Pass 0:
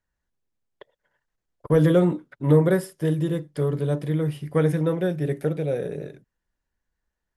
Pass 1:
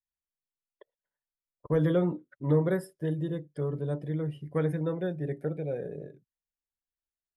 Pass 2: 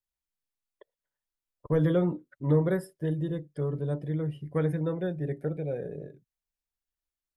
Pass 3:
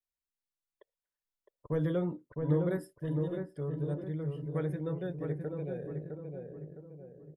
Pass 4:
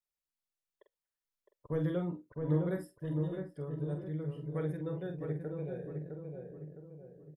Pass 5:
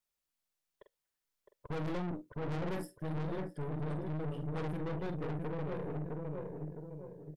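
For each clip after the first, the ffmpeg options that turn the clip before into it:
ffmpeg -i in.wav -af "afftdn=noise_reduction=15:noise_floor=-43,volume=-7.5dB" out.wav
ffmpeg -i in.wav -af "lowshelf=frequency=66:gain=9.5" out.wav
ffmpeg -i in.wav -filter_complex "[0:a]asplit=2[link_01][link_02];[link_02]adelay=660,lowpass=frequency=1200:poles=1,volume=-4dB,asplit=2[link_03][link_04];[link_04]adelay=660,lowpass=frequency=1200:poles=1,volume=0.46,asplit=2[link_05][link_06];[link_06]adelay=660,lowpass=frequency=1200:poles=1,volume=0.46,asplit=2[link_07][link_08];[link_08]adelay=660,lowpass=frequency=1200:poles=1,volume=0.46,asplit=2[link_09][link_10];[link_10]adelay=660,lowpass=frequency=1200:poles=1,volume=0.46,asplit=2[link_11][link_12];[link_12]adelay=660,lowpass=frequency=1200:poles=1,volume=0.46[link_13];[link_01][link_03][link_05][link_07][link_09][link_11][link_13]amix=inputs=7:normalize=0,volume=-6.5dB" out.wav
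ffmpeg -i in.wav -filter_complex "[0:a]asplit=2[link_01][link_02];[link_02]adelay=46,volume=-7.5dB[link_03];[link_01][link_03]amix=inputs=2:normalize=0,volume=-3dB" out.wav
ffmpeg -i in.wav -af "aeval=exprs='(tanh(158*val(0)+0.7)-tanh(0.7))/158':channel_layout=same,volume=8.5dB" out.wav

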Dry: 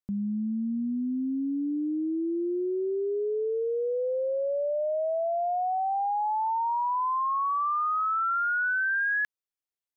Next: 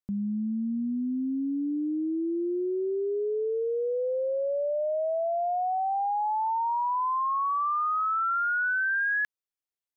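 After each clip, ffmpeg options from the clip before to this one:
ffmpeg -i in.wav -af anull out.wav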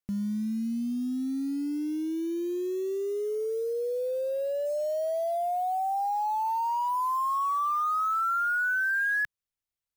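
ffmpeg -i in.wav -af "asubboost=boost=4:cutoff=140,acrusher=bits=6:mode=log:mix=0:aa=0.000001" out.wav

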